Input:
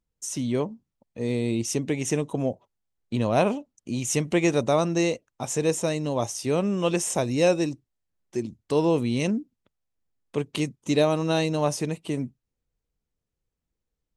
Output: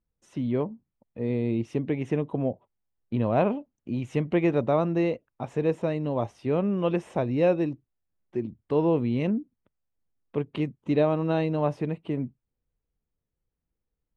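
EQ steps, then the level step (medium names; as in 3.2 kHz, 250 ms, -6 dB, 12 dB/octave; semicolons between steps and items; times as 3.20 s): distance through air 490 m; 0.0 dB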